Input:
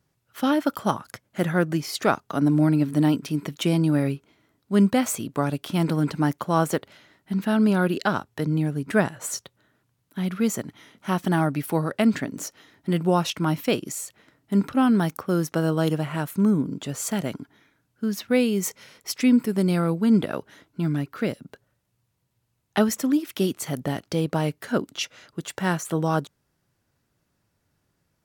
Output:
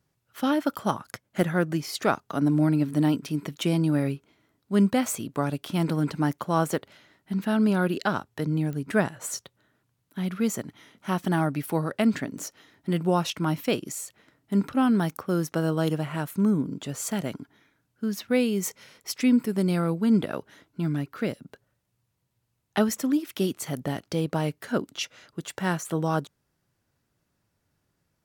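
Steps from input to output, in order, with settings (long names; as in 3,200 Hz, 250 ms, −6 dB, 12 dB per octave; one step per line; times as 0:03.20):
0:01.00–0:01.52: transient designer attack +4 dB, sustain −2 dB
digital clicks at 0:08.73/0:18.66, −22 dBFS
level −2.5 dB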